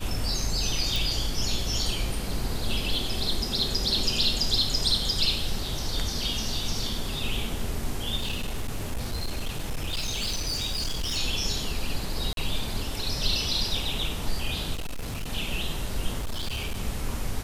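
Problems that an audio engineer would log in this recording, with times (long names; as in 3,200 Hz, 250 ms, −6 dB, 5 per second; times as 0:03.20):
0:00.96: click
0:08.18–0:11.18: clipping −25 dBFS
0:12.33–0:12.37: drop-out 42 ms
0:14.73–0:15.29: clipping −28.5 dBFS
0:16.18–0:16.78: clipping −26 dBFS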